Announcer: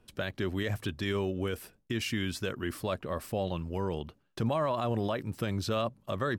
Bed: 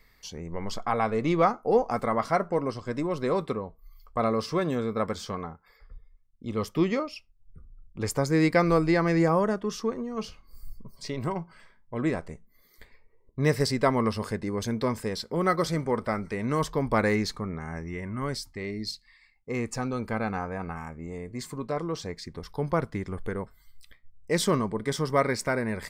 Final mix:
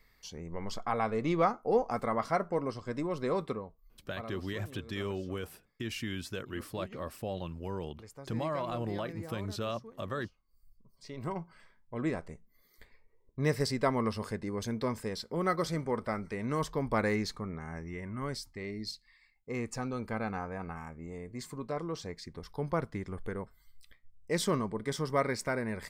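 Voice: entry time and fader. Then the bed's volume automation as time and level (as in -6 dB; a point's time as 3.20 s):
3.90 s, -5.0 dB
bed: 3.49 s -5 dB
4.49 s -22 dB
10.72 s -22 dB
11.32 s -5.5 dB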